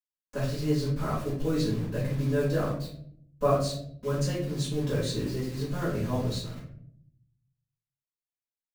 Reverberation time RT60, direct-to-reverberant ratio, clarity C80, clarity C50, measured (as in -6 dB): 0.65 s, -10.5 dB, 8.5 dB, 3.5 dB